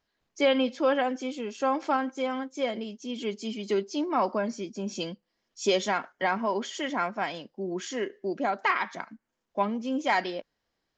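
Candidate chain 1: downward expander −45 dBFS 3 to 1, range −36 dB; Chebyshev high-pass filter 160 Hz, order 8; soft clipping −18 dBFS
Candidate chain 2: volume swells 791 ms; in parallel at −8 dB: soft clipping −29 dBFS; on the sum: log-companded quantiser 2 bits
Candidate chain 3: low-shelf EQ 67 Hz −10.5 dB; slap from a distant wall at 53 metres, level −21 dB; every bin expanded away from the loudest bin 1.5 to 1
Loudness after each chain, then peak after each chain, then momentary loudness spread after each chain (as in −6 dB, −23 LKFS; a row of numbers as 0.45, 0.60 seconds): −31.0, −30.0, −32.0 LKFS; −18.5, −24.5, −13.0 dBFS; 10, 10, 15 LU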